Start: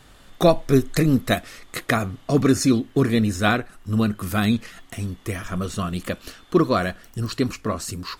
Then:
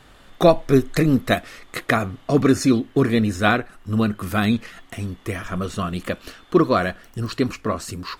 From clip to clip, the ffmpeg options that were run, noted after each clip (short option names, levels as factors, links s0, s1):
-af "bass=f=250:g=-3,treble=f=4000:g=-6,volume=1.33"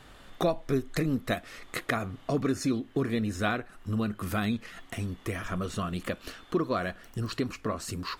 -af "acompressor=threshold=0.0355:ratio=2,volume=0.75"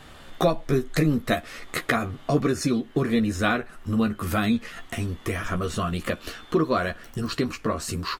-filter_complex "[0:a]asplit=2[s0][s1];[s1]adelay=13,volume=0.501[s2];[s0][s2]amix=inputs=2:normalize=0,volume=1.78"